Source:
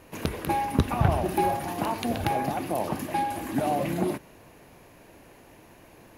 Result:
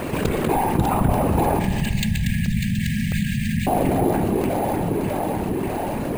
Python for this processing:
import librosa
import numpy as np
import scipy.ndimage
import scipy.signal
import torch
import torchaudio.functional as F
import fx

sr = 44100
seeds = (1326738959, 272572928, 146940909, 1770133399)

y = scipy.signal.sosfilt(scipy.signal.butter(2, 94.0, 'highpass', fs=sr, output='sos'), x)
y = fx.low_shelf(y, sr, hz=400.0, db=7.5)
y = fx.echo_alternate(y, sr, ms=298, hz=1300.0, feedback_pct=72, wet_db=-4)
y = fx.whisperise(y, sr, seeds[0])
y = fx.brickwall_bandstop(y, sr, low_hz=230.0, high_hz=1600.0, at=(1.59, 3.67))
y = np.repeat(scipy.signal.resample_poly(y, 1, 4), 4)[:len(y)]
y = fx.rev_spring(y, sr, rt60_s=1.4, pass_ms=(48,), chirp_ms=55, drr_db=12.0)
y = fx.buffer_crackle(y, sr, first_s=0.48, period_s=0.66, block=64, kind='zero')
y = fx.env_flatten(y, sr, amount_pct=70)
y = y * 10.0 ** (-4.5 / 20.0)